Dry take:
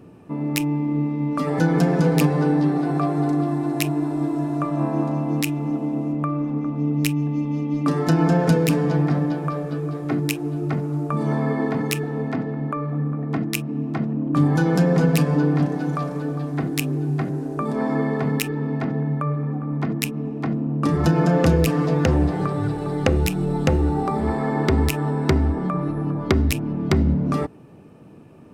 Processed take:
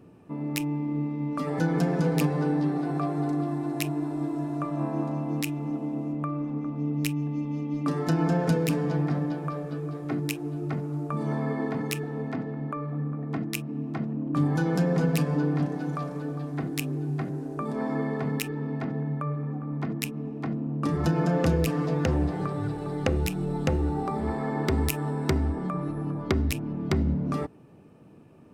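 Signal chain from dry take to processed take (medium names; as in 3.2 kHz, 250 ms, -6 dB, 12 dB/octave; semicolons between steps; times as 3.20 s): 24.67–26.22 s: treble shelf 8.5 kHz +10 dB; trim -6.5 dB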